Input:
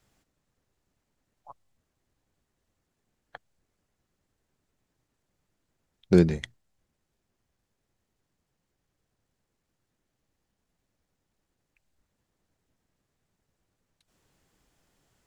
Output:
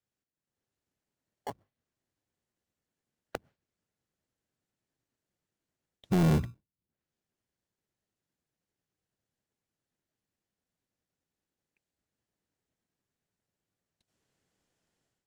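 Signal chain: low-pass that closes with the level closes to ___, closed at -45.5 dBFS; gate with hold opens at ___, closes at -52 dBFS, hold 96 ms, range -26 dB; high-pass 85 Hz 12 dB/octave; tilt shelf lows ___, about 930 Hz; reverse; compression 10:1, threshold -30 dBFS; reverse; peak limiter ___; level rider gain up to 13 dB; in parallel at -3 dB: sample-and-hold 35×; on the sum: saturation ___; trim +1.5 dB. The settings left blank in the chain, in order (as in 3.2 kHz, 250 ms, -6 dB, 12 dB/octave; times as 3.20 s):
340 Hz, -51 dBFS, -3.5 dB, -28 dBFS, -22 dBFS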